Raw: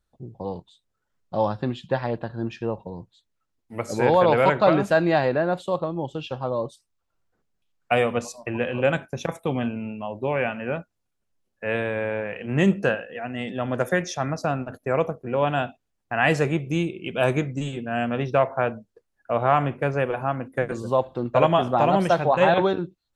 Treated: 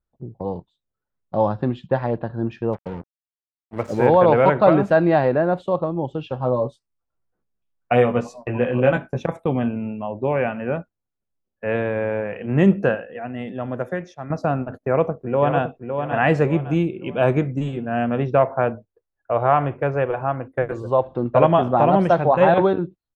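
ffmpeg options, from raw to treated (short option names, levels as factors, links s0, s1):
-filter_complex "[0:a]asplit=3[s0][s1][s2];[s0]afade=t=out:st=2.72:d=0.02[s3];[s1]acrusher=bits=5:mix=0:aa=0.5,afade=t=in:st=2.72:d=0.02,afade=t=out:st=4.06:d=0.02[s4];[s2]afade=t=in:st=4.06:d=0.02[s5];[s3][s4][s5]amix=inputs=3:normalize=0,asettb=1/sr,asplit=3[s6][s7][s8];[s6]atrim=end=6.384[s9];[s7]atrim=start=6.38:end=9.2,asetpts=PTS-STARTPTS,afade=t=in:d=0.004:c=qsin,afade=t=out:st=2.816:d=0.004:c=qsin,asplit=2[s10][s11];[s11]adelay=16,volume=0.562[s12];[s10][s12]amix=inputs=2:normalize=0,atrim=end_sample=124362[s13];[s8]atrim=start=9.196[s14];[s9][s13]acrossfade=d=0.004:c1=hsin:c2=qsin[s15];[s15][s14]acrossfade=d=0.004:c1=qsin:c2=hsin,asplit=2[s16][s17];[s17]afade=t=in:st=14.82:d=0.01,afade=t=out:st=15.62:d=0.01,aecho=0:1:560|1120|1680|2240:0.473151|0.165603|0.057961|0.0202864[s18];[s16][s18]amix=inputs=2:normalize=0,asettb=1/sr,asplit=3[s19][s20][s21];[s19]atrim=end=18.754[s22];[s20]atrim=start=18.75:end=21.04,asetpts=PTS-STARTPTS,afade=t=in:d=0.004:c=qsin,afade=t=out:st=2.286:d=0.004:c=qsin,equalizer=f=210:w=2.3:g=-11.5[s23];[s21]atrim=start=21.036[s24];[s22][s23]acrossfade=d=0.004:c1=hsin:c2=qsin[s25];[s25][s24]acrossfade=d=0.004:c1=qsin:c2=hsin,asplit=2[s26][s27];[s26]atrim=end=14.3,asetpts=PTS-STARTPTS,afade=t=out:st=12.8:d=1.5:silence=0.266073[s28];[s27]atrim=start=14.3,asetpts=PTS-STARTPTS,afade=t=in:d=0.004:c=hsin:silence=0.266073[s29];[s28][s29]concat=n=2:v=0:a=1,agate=range=0.316:threshold=0.01:ratio=16:detection=peak,lowpass=f=3600:p=1,highshelf=f=2200:g=-10.5,volume=1.68"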